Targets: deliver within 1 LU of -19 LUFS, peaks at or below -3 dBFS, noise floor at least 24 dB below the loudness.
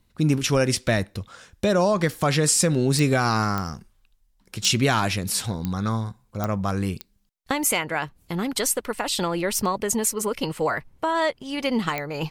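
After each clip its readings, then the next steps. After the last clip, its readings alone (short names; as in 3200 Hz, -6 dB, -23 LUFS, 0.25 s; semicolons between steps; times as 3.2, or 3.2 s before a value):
clicks 7; loudness -23.5 LUFS; peak -8.5 dBFS; loudness target -19.0 LUFS
-> de-click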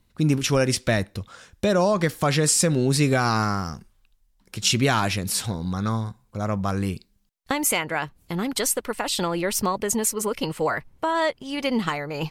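clicks 0; loudness -23.5 LUFS; peak -8.5 dBFS; loudness target -19.0 LUFS
-> gain +4.5 dB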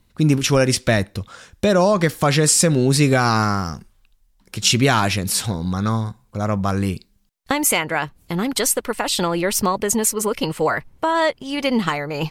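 loudness -19.0 LUFS; peak -4.0 dBFS; noise floor -60 dBFS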